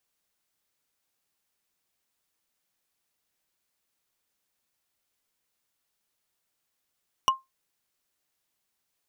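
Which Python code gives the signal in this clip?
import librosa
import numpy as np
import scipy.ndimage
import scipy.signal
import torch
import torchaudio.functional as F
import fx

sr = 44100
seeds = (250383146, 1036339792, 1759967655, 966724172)

y = fx.strike_wood(sr, length_s=0.45, level_db=-14.0, body='bar', hz=1060.0, decay_s=0.18, tilt_db=4, modes=5)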